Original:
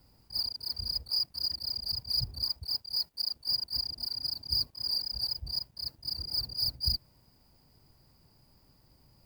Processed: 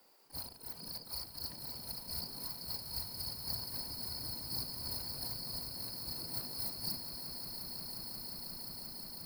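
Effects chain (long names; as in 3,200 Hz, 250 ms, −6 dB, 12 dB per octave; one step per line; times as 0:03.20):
echo that builds up and dies away 177 ms, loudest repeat 8, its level −11 dB
gate on every frequency bin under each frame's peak −15 dB weak
level +3 dB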